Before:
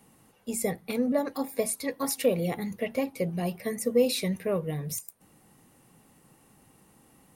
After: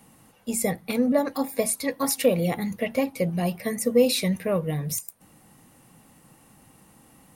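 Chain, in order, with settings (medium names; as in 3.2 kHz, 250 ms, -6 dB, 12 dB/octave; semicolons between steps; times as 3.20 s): peaking EQ 400 Hz -6.5 dB 0.29 oct; trim +5 dB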